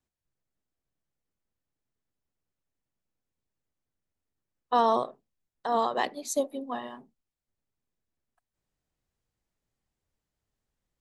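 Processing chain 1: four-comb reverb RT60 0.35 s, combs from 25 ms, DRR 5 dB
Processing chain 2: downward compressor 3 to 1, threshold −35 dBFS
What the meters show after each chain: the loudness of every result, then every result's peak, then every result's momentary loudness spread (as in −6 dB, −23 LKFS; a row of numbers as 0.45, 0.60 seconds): −27.5, −38.5 LKFS; −10.0, −21.5 dBFS; 15, 10 LU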